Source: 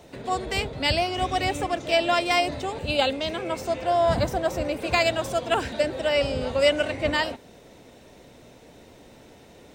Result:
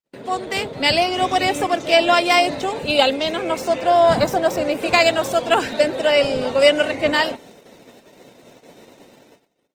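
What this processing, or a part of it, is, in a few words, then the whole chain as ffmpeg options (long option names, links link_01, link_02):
video call: -af "highpass=170,dynaudnorm=framelen=180:gausssize=7:maxgain=4.5dB,agate=range=-56dB:threshold=-45dB:ratio=16:detection=peak,volume=3dB" -ar 48000 -c:a libopus -b:a 20k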